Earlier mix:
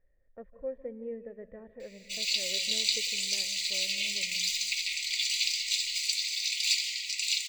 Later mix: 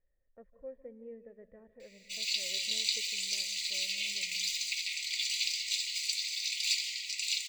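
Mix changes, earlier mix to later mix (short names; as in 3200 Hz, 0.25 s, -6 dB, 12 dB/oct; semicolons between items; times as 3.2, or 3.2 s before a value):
speech -8.5 dB; background -3.5 dB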